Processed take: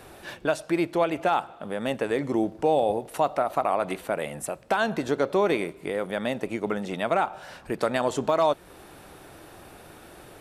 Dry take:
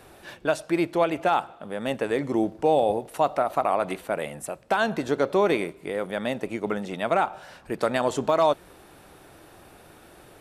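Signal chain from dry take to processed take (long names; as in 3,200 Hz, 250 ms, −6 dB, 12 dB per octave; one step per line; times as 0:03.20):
in parallel at 0 dB: downward compressor, threshold −32 dBFS, peak gain reduction 15 dB
0:06.11–0:06.80: on the sum: floating-point word with a short mantissa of 8 bits
level −3 dB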